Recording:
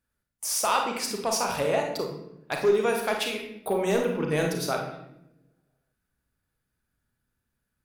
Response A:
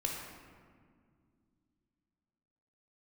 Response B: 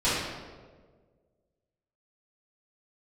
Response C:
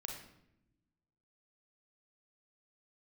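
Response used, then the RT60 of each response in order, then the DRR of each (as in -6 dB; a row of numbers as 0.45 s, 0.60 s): C; 2.1 s, 1.6 s, 0.80 s; -0.5 dB, -14.5 dB, 1.5 dB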